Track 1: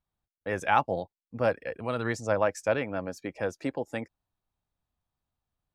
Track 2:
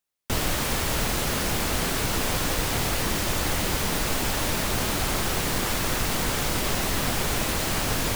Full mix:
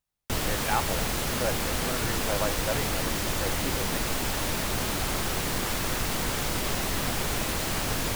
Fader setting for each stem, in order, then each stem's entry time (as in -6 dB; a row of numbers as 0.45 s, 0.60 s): -5.0 dB, -3.0 dB; 0.00 s, 0.00 s